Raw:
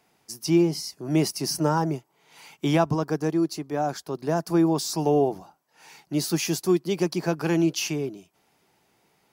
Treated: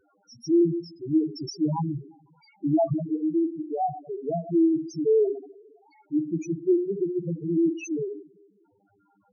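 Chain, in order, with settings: two-slope reverb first 0.7 s, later 1.9 s, DRR 5.5 dB; buzz 100 Hz, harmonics 16, -55 dBFS 0 dB/oct; loudest bins only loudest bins 2; gain +1.5 dB

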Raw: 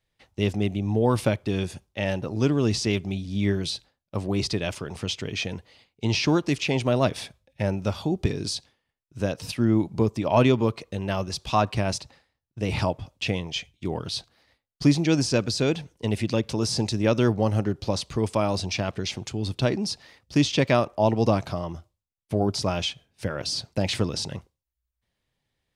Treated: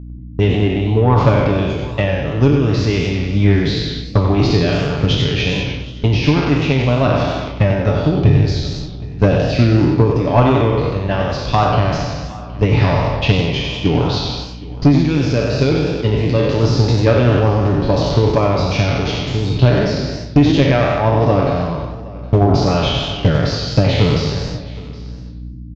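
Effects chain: spectral trails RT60 1.44 s; gate -33 dBFS, range -40 dB; low shelf 91 Hz +11 dB; comb 7 ms, depth 49%; AGC; transient shaper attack +10 dB, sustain +6 dB; soft clip -2.5 dBFS, distortion -14 dB; hum 60 Hz, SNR 16 dB; downsampling 16000 Hz; air absorption 190 m; on a send: echo 0.767 s -19.5 dB; on the sum: warbling echo 94 ms, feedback 41%, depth 165 cents, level -7.5 dB; gain -1 dB

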